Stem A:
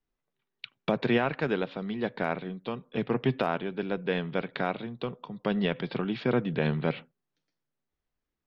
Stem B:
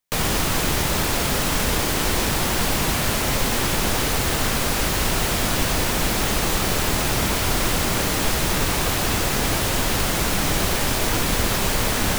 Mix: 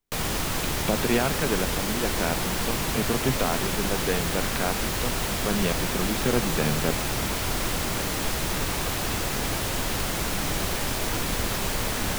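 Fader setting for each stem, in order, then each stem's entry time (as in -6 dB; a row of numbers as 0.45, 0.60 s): +1.0, -6.0 dB; 0.00, 0.00 s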